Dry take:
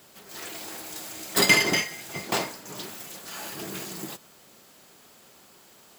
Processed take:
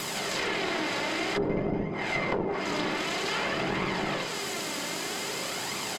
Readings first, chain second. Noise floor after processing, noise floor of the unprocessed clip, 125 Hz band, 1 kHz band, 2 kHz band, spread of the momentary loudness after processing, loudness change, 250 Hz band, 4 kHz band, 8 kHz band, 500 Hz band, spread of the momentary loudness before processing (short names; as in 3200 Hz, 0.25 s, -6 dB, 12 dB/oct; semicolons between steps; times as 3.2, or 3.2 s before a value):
-34 dBFS, -55 dBFS, +4.0 dB, +4.0 dB, -2.5 dB, 3 LU, -3.0 dB, +4.0 dB, -2.0 dB, -4.0 dB, +4.5 dB, 20 LU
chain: per-bin compression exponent 0.6; echo 75 ms -3.5 dB; treble ducked by the level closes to 410 Hz, closed at -17.5 dBFS; HPF 110 Hz; tube stage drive 20 dB, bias 0.6; flange 0.52 Hz, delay 0.8 ms, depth 2.8 ms, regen +54%; fast leveller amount 50%; gain +4.5 dB